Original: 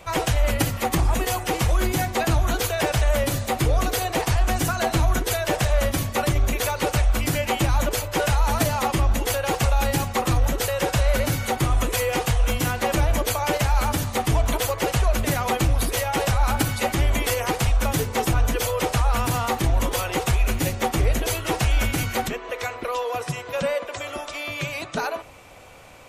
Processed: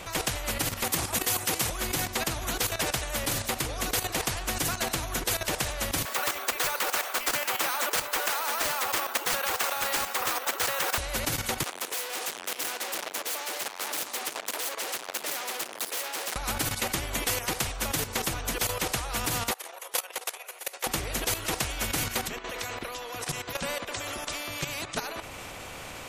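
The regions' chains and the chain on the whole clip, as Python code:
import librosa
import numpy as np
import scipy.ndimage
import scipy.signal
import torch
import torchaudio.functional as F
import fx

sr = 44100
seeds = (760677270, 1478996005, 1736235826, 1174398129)

y = fx.chain(x, sr, fx.highpass(hz=82.0, slope=24),
    fx.high_shelf(hz=6300.0, db=11.5), at=(0.84, 1.7))
y = fx.chain(y, sr, fx.highpass(hz=450.0, slope=24),
    fx.peak_eq(hz=1300.0, db=13.0, octaves=1.4),
    fx.resample_bad(factor=3, down='none', up='hold'), at=(6.05, 10.98))
y = fx.chain(y, sr, fx.overload_stage(gain_db=28.5),
    fx.highpass(hz=420.0, slope=24), at=(11.63, 16.36))
y = fx.chain(y, sr, fx.steep_highpass(hz=460.0, slope=48),
    fx.peak_eq(hz=11000.0, db=11.0, octaves=0.36),
    fx.level_steps(step_db=24), at=(19.51, 20.87))
y = fx.low_shelf(y, sr, hz=260.0, db=3.0)
y = fx.level_steps(y, sr, step_db=12)
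y = fx.spectral_comp(y, sr, ratio=2.0)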